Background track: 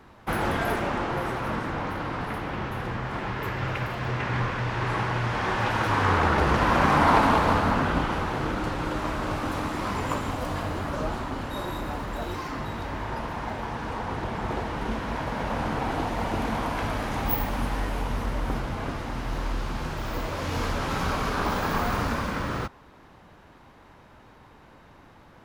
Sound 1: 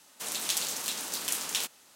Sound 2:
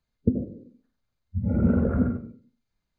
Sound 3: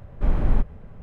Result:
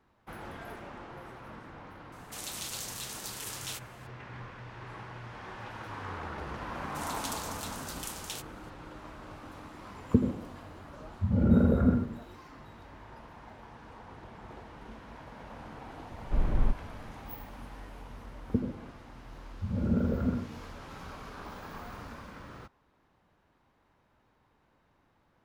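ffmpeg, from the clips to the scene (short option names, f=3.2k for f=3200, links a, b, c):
-filter_complex "[1:a]asplit=2[a][b];[2:a]asplit=2[c][d];[0:a]volume=-17.5dB[e];[a]alimiter=limit=-19.5dB:level=0:latency=1:release=33,atrim=end=1.95,asetpts=PTS-STARTPTS,volume=-5.5dB,afade=t=in:d=0.004:c=hsin,afade=t=out:st=1.946:d=0.004:c=hsin,adelay=2120[f];[b]atrim=end=1.95,asetpts=PTS-STARTPTS,volume=-9.5dB,afade=t=in:d=0.004:c=hsin,afade=t=out:st=1.946:d=0.004:c=hsin,adelay=6750[g];[c]atrim=end=2.98,asetpts=PTS-STARTPTS,volume=-1dB,afade=t=in:d=0.004:c=hsin,afade=t=out:st=2.976:d=0.004:c=hsin,adelay=9870[h];[3:a]atrim=end=1.02,asetpts=PTS-STARTPTS,volume=-6.5dB,afade=t=in:d=0.004:c=hsin,afade=t=out:st=1.016:d=0.004:c=hsin,adelay=16100[i];[d]atrim=end=2.98,asetpts=PTS-STARTPTS,volume=-6.5dB,afade=t=in:d=0.004:c=hsin,afade=t=out:st=2.976:d=0.004:c=hsin,adelay=18270[j];[e][f][g][h][i][j]amix=inputs=6:normalize=0"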